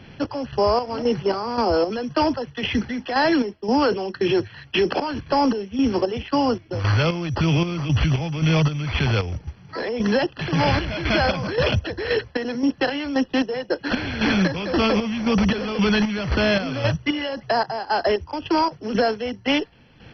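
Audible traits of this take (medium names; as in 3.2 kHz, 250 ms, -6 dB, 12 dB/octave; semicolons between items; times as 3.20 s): aliases and images of a low sample rate 5.8 kHz, jitter 0%; chopped level 1.9 Hz, depth 60%, duty 50%; MP2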